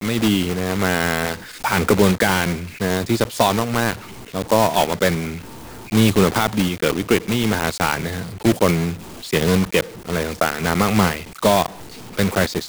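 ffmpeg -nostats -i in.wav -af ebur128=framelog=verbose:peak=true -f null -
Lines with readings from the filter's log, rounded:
Integrated loudness:
  I:         -19.5 LUFS
  Threshold: -29.8 LUFS
Loudness range:
  LRA:         1.4 LU
  Threshold: -39.8 LUFS
  LRA low:   -20.5 LUFS
  LRA high:  -19.1 LUFS
True peak:
  Peak:       -3.5 dBFS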